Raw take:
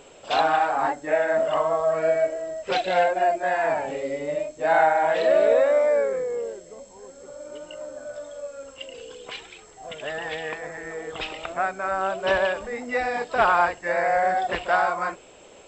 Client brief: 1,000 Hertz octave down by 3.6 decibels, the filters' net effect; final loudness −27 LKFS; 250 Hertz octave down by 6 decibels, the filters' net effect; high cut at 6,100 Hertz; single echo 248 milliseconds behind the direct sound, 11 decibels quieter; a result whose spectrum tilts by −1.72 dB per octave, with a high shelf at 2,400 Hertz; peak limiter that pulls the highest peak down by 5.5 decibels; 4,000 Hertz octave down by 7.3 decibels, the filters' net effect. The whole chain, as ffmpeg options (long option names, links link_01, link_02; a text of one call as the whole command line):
ffmpeg -i in.wav -af "lowpass=6100,equalizer=frequency=250:width_type=o:gain=-8.5,equalizer=frequency=1000:width_type=o:gain=-3.5,highshelf=frequency=2400:gain=-6,equalizer=frequency=4000:width_type=o:gain=-4,alimiter=limit=-16.5dB:level=0:latency=1,aecho=1:1:248:0.282,volume=0.5dB" out.wav